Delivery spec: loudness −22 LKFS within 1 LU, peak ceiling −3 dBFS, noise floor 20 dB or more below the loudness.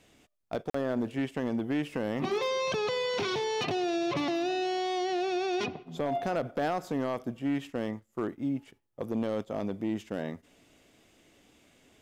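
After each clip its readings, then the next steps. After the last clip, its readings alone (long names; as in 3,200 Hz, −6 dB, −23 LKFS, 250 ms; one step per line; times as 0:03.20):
share of clipped samples 1.0%; peaks flattened at −23.5 dBFS; number of dropouts 1; longest dropout 44 ms; integrated loudness −32.0 LKFS; sample peak −23.5 dBFS; target loudness −22.0 LKFS
→ clipped peaks rebuilt −23.5 dBFS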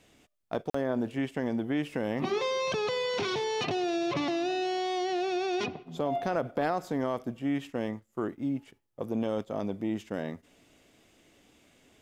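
share of clipped samples 0.0%; number of dropouts 1; longest dropout 44 ms
→ repair the gap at 0:00.70, 44 ms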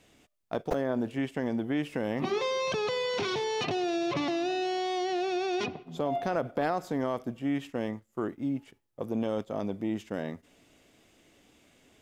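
number of dropouts 0; integrated loudness −31.5 LKFS; sample peak −15.5 dBFS; target loudness −22.0 LKFS
→ level +9.5 dB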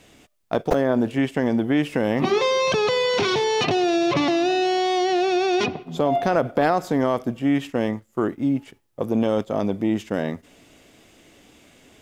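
integrated loudness −22.0 LKFS; sample peak −6.0 dBFS; background noise floor −56 dBFS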